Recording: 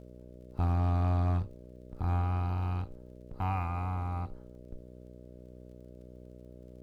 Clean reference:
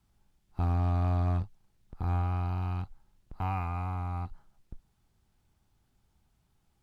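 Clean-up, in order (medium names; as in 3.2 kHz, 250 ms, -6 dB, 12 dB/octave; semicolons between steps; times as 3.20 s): de-click; de-hum 61.6 Hz, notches 10; inverse comb 75 ms -22.5 dB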